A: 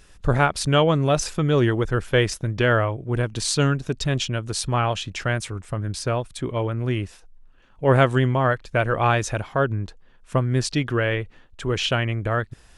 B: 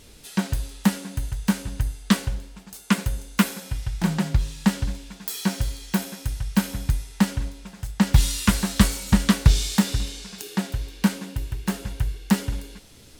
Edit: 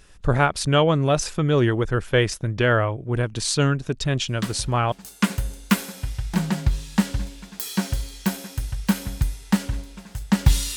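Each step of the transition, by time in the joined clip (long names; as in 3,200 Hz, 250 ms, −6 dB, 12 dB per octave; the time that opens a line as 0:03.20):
A
0:04.28: mix in B from 0:01.96 0.64 s −8.5 dB
0:04.92: continue with B from 0:02.60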